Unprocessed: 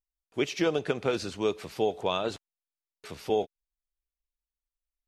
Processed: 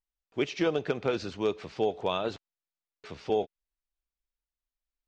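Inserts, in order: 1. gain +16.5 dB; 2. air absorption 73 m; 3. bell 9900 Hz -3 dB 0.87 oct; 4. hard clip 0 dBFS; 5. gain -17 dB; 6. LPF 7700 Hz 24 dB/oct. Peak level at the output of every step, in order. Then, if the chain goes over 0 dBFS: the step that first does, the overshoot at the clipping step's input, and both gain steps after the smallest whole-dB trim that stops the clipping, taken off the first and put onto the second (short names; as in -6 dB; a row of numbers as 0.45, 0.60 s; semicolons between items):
+3.5, +3.0, +3.0, 0.0, -17.0, -16.5 dBFS; step 1, 3.0 dB; step 1 +13.5 dB, step 5 -14 dB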